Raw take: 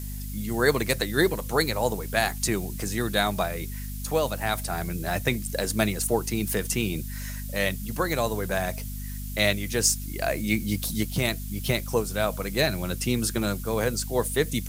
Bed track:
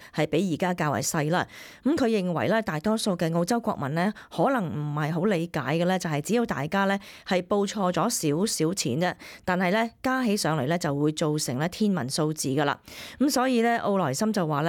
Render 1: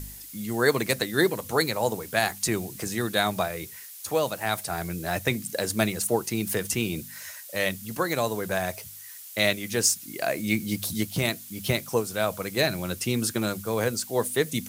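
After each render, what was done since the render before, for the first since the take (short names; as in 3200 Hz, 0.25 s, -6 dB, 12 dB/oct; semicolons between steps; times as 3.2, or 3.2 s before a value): de-hum 50 Hz, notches 5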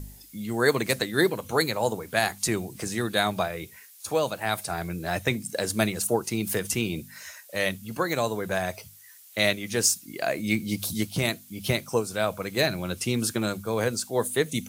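noise print and reduce 8 dB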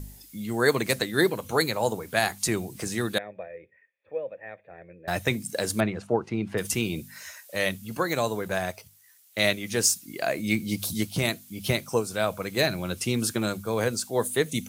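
3.18–5.08 vocal tract filter e; 5.8–6.58 LPF 2000 Hz; 8.42–9.44 G.711 law mismatch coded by A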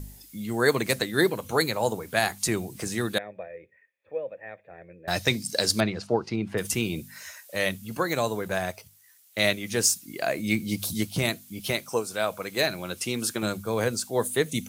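5.1–6.36 bell 4800 Hz +13.5 dB 0.78 oct; 11.6–13.43 low shelf 190 Hz -11 dB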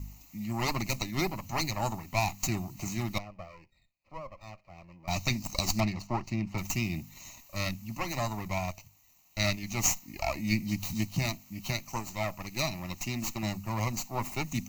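minimum comb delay 0.3 ms; fixed phaser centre 2300 Hz, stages 8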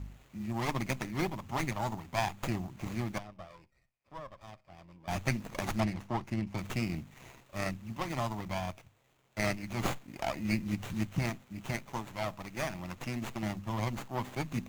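AM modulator 130 Hz, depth 25%; running maximum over 9 samples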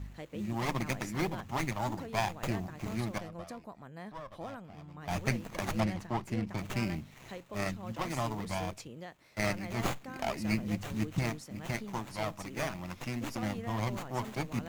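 add bed track -20.5 dB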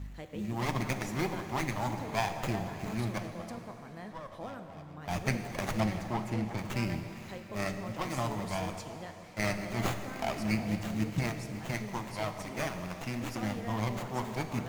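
delay with a stepping band-pass 0.177 s, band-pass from 440 Hz, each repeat 0.7 oct, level -10 dB; plate-style reverb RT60 3.3 s, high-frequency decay 0.95×, DRR 7 dB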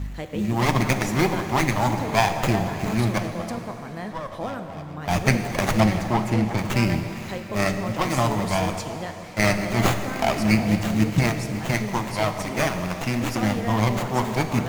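gain +11.5 dB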